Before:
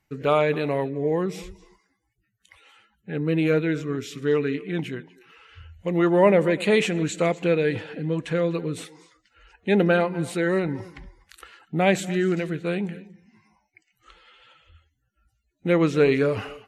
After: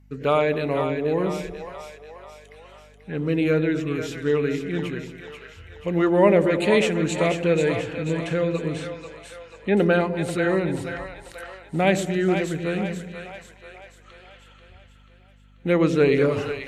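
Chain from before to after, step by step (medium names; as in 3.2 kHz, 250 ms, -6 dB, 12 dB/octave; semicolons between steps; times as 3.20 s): two-band feedback delay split 550 Hz, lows 102 ms, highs 487 ms, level -7 dB; 8.73–9.77 s: low-pass that closes with the level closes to 2.3 kHz, closed at -21.5 dBFS; hum 50 Hz, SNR 29 dB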